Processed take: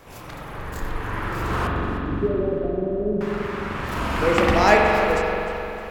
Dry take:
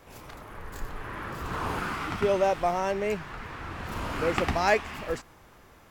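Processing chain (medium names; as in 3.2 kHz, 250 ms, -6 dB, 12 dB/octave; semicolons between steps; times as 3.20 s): 1.67–3.21 s: inverse Chebyshev low-pass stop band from 1.4 kHz, stop band 60 dB; spring tank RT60 3.1 s, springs 43 ms, chirp 25 ms, DRR -1.5 dB; modulated delay 303 ms, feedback 40%, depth 121 cents, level -14.5 dB; trim +5.5 dB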